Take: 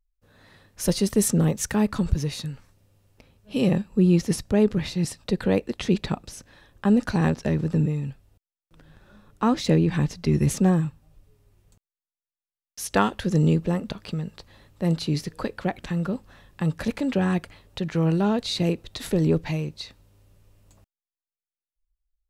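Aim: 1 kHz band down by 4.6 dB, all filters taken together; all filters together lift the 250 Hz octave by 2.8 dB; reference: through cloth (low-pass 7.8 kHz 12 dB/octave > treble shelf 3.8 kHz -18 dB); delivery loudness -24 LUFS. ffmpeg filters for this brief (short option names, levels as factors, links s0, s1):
-af "lowpass=7800,equalizer=f=250:t=o:g=4.5,equalizer=f=1000:t=o:g=-5,highshelf=f=3800:g=-18,volume=0.841"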